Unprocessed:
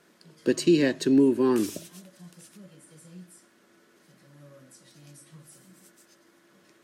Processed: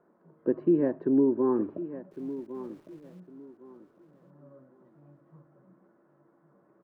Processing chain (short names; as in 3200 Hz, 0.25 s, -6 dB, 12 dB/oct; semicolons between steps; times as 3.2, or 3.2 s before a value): LPF 1100 Hz 24 dB/oct; low shelf 270 Hz -7 dB; 2.11–3.2 sample gate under -58.5 dBFS; feedback echo 1.106 s, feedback 25%, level -13.5 dB